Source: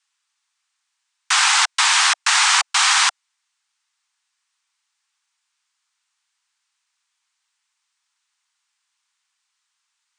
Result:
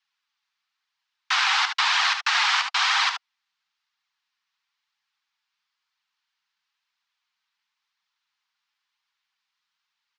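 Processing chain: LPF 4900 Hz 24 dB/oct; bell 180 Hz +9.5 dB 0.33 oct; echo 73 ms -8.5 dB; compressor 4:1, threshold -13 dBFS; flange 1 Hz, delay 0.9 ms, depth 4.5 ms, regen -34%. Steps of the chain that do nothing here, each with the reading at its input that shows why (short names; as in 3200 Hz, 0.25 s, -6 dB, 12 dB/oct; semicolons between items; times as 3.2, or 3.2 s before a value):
bell 180 Hz: input band starts at 640 Hz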